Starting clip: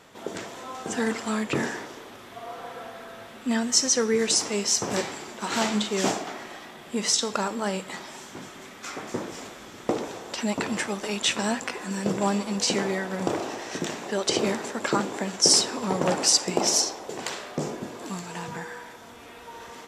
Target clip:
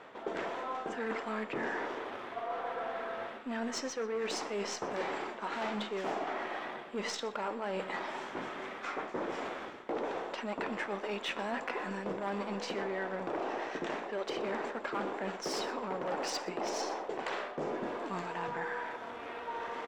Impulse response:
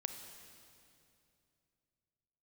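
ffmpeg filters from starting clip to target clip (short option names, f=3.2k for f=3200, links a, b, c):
-filter_complex "[0:a]asplit=2[a][b];[b]acrusher=bits=4:dc=4:mix=0:aa=0.000001,volume=-9.5dB[c];[a][c]amix=inputs=2:normalize=0,aemphasis=mode=reproduction:type=75fm,asoftclip=type=hard:threshold=-19dB,bass=f=250:g=-14,treble=f=4k:g=-11,aecho=1:1:123:0.106,areverse,acompressor=threshold=-37dB:ratio=6,areverse,volume=3.5dB"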